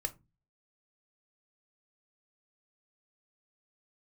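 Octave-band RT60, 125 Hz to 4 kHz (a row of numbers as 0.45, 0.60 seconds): 0.55, 0.45, 0.25, 0.20, 0.20, 0.15 seconds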